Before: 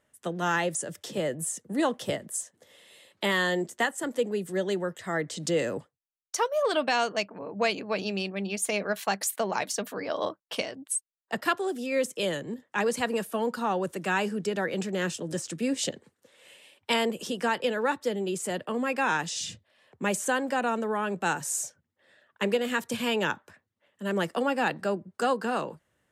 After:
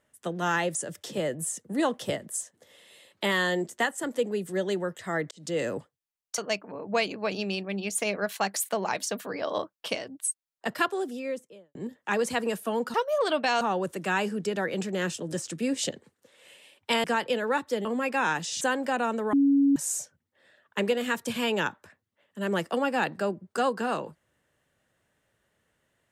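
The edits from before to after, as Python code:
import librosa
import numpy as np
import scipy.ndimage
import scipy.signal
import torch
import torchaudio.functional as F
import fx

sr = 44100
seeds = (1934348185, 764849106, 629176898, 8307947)

y = fx.studio_fade_out(x, sr, start_s=11.56, length_s=0.86)
y = fx.edit(y, sr, fx.fade_in_span(start_s=5.31, length_s=0.35),
    fx.move(start_s=6.38, length_s=0.67, to_s=13.61),
    fx.cut(start_s=17.04, length_s=0.34),
    fx.cut(start_s=18.19, length_s=0.5),
    fx.cut(start_s=19.45, length_s=0.8),
    fx.bleep(start_s=20.97, length_s=0.43, hz=279.0, db=-17.5), tone=tone)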